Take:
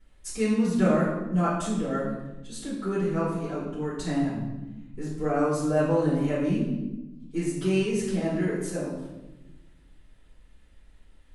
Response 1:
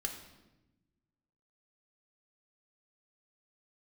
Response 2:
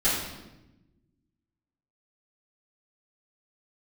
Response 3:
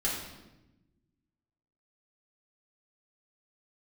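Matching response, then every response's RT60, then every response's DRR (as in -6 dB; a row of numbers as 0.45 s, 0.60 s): 2; 1.0 s, 1.0 s, 1.0 s; 2.5 dB, -14.5 dB, -6.5 dB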